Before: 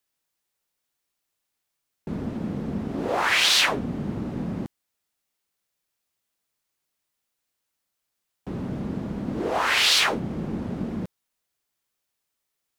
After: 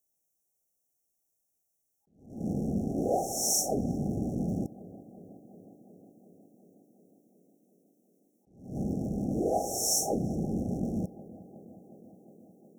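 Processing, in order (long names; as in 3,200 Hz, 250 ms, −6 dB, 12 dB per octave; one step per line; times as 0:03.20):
loose part that buzzes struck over −33 dBFS, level −26 dBFS
high-shelf EQ 7,200 Hz +4.5 dB
tape delay 363 ms, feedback 88%, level −17 dB, low-pass 1,100 Hz
brick-wall band-stop 820–5,400 Hz
level that may rise only so fast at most 110 dB per second
level −1 dB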